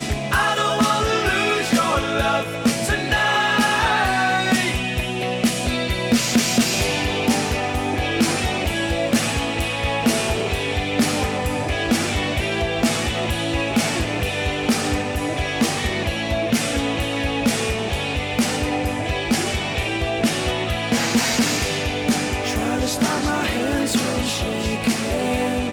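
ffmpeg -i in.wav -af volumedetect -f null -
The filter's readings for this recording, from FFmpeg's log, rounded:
mean_volume: -21.0 dB
max_volume: -5.2 dB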